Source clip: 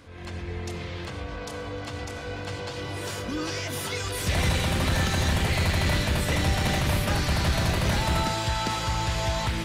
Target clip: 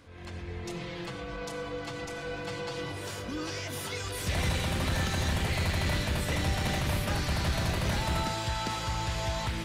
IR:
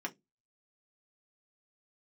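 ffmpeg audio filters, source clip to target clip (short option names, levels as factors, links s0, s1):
-filter_complex "[0:a]asettb=1/sr,asplit=3[s0][s1][s2];[s0]atrim=end=0.644[s3];[s1]atrim=start=0.64:end=2.92,asetpts=PTS-STARTPTS,afade=t=in:d=0.004:c=qsin,afade=t=out:st=2.276:d=0.004:c=qsin,aecho=1:1:6:0.87,atrim=end_sample=100548[s4];[s2]atrim=start=2.916[s5];[s3][s4]acrossfade=d=0.004:c1=hsin:c2=qsin[s6];[s6][s5]acrossfade=d=0.004:c1=qsin:c2=hsin,volume=0.562"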